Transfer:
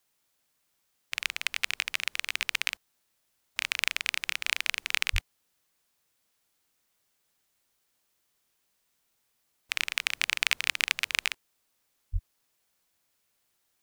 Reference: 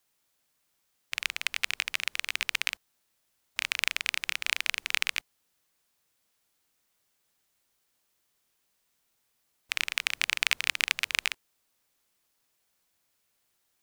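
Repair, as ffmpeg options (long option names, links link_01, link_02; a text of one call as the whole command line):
ffmpeg -i in.wav -filter_complex "[0:a]asplit=3[link_01][link_02][link_03];[link_01]afade=type=out:start_time=5.12:duration=0.02[link_04];[link_02]highpass=frequency=140:width=0.5412,highpass=frequency=140:width=1.3066,afade=type=in:start_time=5.12:duration=0.02,afade=type=out:start_time=5.24:duration=0.02[link_05];[link_03]afade=type=in:start_time=5.24:duration=0.02[link_06];[link_04][link_05][link_06]amix=inputs=3:normalize=0,asplit=3[link_07][link_08][link_09];[link_07]afade=type=out:start_time=12.12:duration=0.02[link_10];[link_08]highpass=frequency=140:width=0.5412,highpass=frequency=140:width=1.3066,afade=type=in:start_time=12.12:duration=0.02,afade=type=out:start_time=12.24:duration=0.02[link_11];[link_09]afade=type=in:start_time=12.24:duration=0.02[link_12];[link_10][link_11][link_12]amix=inputs=3:normalize=0" out.wav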